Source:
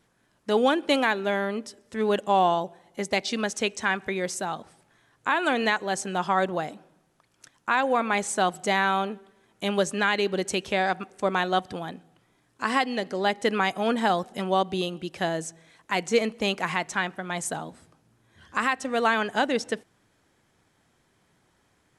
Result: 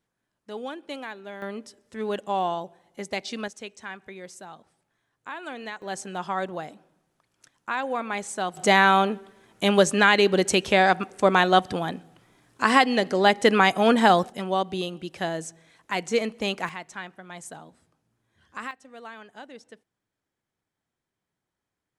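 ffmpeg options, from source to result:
ffmpeg -i in.wav -af "asetnsamples=nb_out_samples=441:pad=0,asendcmd='1.42 volume volume -5dB;3.48 volume volume -12.5dB;5.82 volume volume -5dB;8.57 volume volume 6dB;14.3 volume volume -1.5dB;16.69 volume volume -10dB;18.71 volume volume -19dB',volume=-13.5dB" out.wav

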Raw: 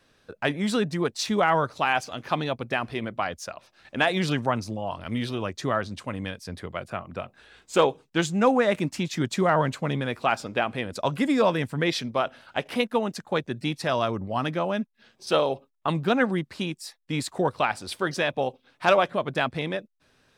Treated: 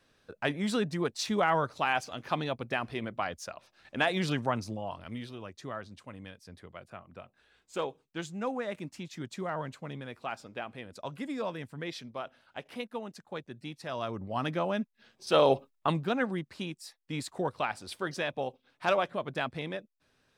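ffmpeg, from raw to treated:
ffmpeg -i in.wav -af "volume=12.5dB,afade=type=out:start_time=4.73:duration=0.55:silence=0.375837,afade=type=in:start_time=13.84:duration=0.69:silence=0.334965,afade=type=in:start_time=15.32:duration=0.2:silence=0.398107,afade=type=out:start_time=15.52:duration=0.53:silence=0.266073" out.wav

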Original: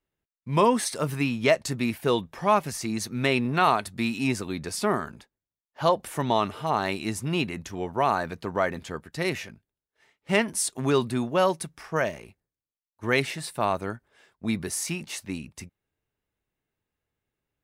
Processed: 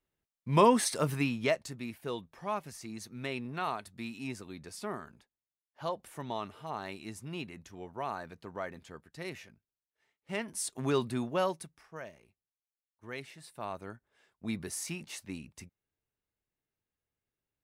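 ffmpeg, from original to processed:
ffmpeg -i in.wav -af "volume=15.5dB,afade=type=out:start_time=0.98:duration=0.75:silence=0.266073,afade=type=in:start_time=10.38:duration=0.42:silence=0.446684,afade=type=out:start_time=11.3:duration=0.58:silence=0.251189,afade=type=in:start_time=13.31:duration=1.27:silence=0.298538" out.wav

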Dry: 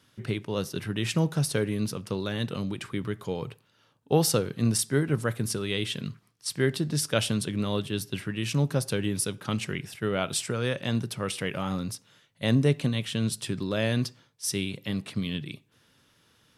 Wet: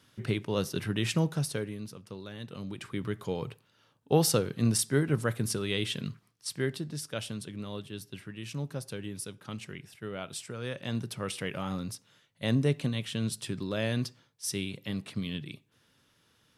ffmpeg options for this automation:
ffmpeg -i in.wav -af "volume=17dB,afade=type=out:start_time=0.92:duration=0.91:silence=0.251189,afade=type=in:start_time=2.46:duration=0.68:silence=0.298538,afade=type=out:start_time=6.1:duration=0.89:silence=0.354813,afade=type=in:start_time=10.5:duration=0.62:silence=0.473151" out.wav

